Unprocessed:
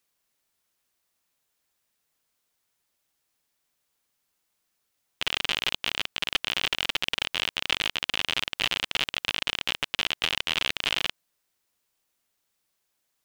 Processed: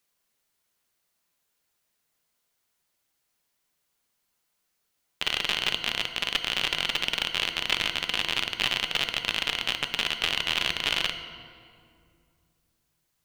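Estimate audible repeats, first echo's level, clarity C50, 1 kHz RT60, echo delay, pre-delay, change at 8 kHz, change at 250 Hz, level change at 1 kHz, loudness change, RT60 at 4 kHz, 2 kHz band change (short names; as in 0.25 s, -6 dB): none, none, 9.0 dB, 2.2 s, none, 5 ms, +0.5 dB, +1.5 dB, +1.0 dB, +1.0 dB, 1.5 s, +0.5 dB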